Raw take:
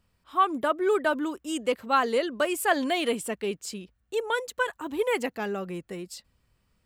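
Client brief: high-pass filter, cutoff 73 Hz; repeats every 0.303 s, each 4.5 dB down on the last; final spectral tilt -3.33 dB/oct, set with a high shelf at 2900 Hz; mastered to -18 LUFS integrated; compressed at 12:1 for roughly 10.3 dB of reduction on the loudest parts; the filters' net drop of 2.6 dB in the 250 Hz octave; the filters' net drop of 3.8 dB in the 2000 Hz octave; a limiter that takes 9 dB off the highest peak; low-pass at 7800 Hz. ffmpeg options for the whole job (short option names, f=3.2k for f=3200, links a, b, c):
-af "highpass=73,lowpass=7.8k,equalizer=f=250:t=o:g=-3.5,equalizer=f=2k:t=o:g=-7,highshelf=f=2.9k:g=4.5,acompressor=threshold=-30dB:ratio=12,alimiter=level_in=4.5dB:limit=-24dB:level=0:latency=1,volume=-4.5dB,aecho=1:1:303|606|909|1212|1515|1818|2121|2424|2727:0.596|0.357|0.214|0.129|0.0772|0.0463|0.0278|0.0167|0.01,volume=18.5dB"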